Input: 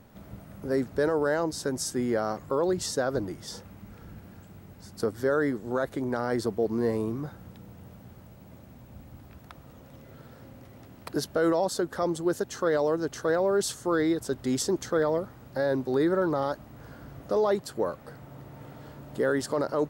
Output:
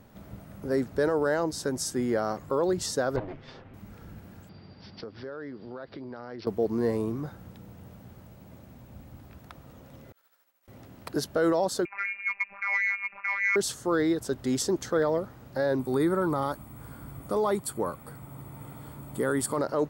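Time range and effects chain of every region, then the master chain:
3.16–3.74 s: comb filter that takes the minimum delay 7.6 ms + low-pass 3.4 kHz 24 dB/octave
4.49–6.47 s: high-pass 84 Hz + compression 3:1, threshold -40 dBFS + careless resampling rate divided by 4×, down none, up filtered
10.12–10.68 s: high-pass 1.1 kHz + treble shelf 7.9 kHz +9.5 dB + expander -46 dBFS
11.85–13.56 s: frequency inversion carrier 2.6 kHz + robot voice 199 Hz + transformer saturation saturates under 900 Hz
15.79–19.59 s: resonant high shelf 7.2 kHz +6.5 dB, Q 3 + comb 0.9 ms, depth 38%
whole clip: none

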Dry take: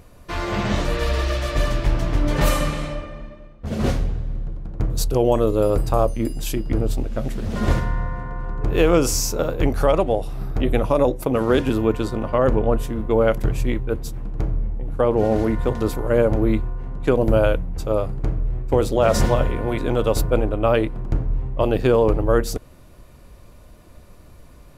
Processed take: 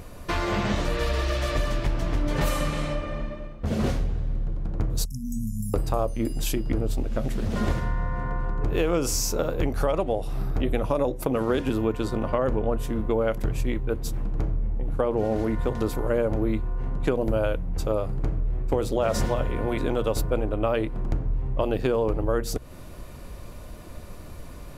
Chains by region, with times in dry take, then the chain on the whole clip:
5.05–5.74 s: brick-wall FIR band-stop 250–5000 Hz + bass shelf 240 Hz -10.5 dB
whole clip: hum notches 60/120 Hz; compression 3:1, threshold -31 dBFS; trim +6 dB

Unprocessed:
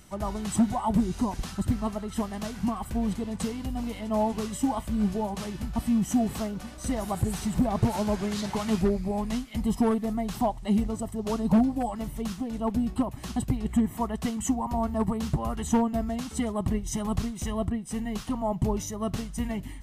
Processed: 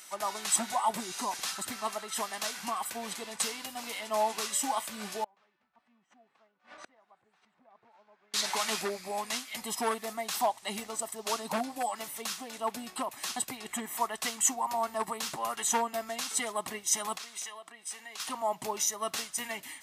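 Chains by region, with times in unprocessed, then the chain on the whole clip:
5.24–8.34 s: low-pass 1.9 kHz + inverted gate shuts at -28 dBFS, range -29 dB
17.17–18.20 s: frequency weighting A + compression 8:1, threshold -42 dBFS
whole clip: Bessel high-pass 650 Hz, order 2; tilt shelf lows -6 dB; band-stop 3 kHz, Q 21; trim +3 dB

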